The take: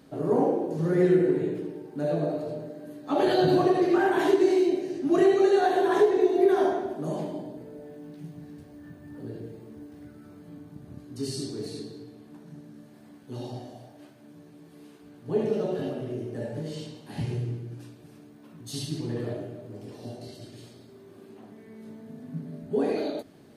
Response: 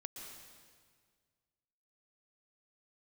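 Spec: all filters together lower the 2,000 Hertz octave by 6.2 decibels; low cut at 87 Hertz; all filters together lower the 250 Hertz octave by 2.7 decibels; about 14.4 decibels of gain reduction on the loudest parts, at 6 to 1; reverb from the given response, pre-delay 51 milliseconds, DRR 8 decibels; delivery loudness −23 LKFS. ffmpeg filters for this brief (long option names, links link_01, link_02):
-filter_complex "[0:a]highpass=87,equalizer=frequency=250:width_type=o:gain=-4.5,equalizer=frequency=2000:width_type=o:gain=-8.5,acompressor=threshold=-34dB:ratio=6,asplit=2[link_01][link_02];[1:a]atrim=start_sample=2205,adelay=51[link_03];[link_02][link_03]afir=irnorm=-1:irlink=0,volume=-5dB[link_04];[link_01][link_04]amix=inputs=2:normalize=0,volume=16dB"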